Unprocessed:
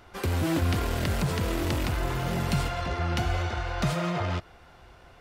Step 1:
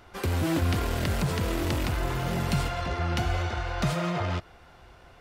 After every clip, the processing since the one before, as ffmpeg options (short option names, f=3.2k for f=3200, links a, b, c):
-af anull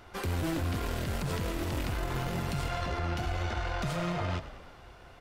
-filter_complex "[0:a]alimiter=level_in=0.5dB:limit=-24dB:level=0:latency=1:release=59,volume=-0.5dB,aeval=exprs='0.0596*(cos(1*acos(clip(val(0)/0.0596,-1,1)))-cos(1*PI/2))+0.0075*(cos(2*acos(clip(val(0)/0.0596,-1,1)))-cos(2*PI/2))':c=same,asplit=8[a][b][c][d][e][f][g][h];[b]adelay=105,afreqshift=-30,volume=-14.5dB[i];[c]adelay=210,afreqshift=-60,volume=-18.5dB[j];[d]adelay=315,afreqshift=-90,volume=-22.5dB[k];[e]adelay=420,afreqshift=-120,volume=-26.5dB[l];[f]adelay=525,afreqshift=-150,volume=-30.6dB[m];[g]adelay=630,afreqshift=-180,volume=-34.6dB[n];[h]adelay=735,afreqshift=-210,volume=-38.6dB[o];[a][i][j][k][l][m][n][o]amix=inputs=8:normalize=0"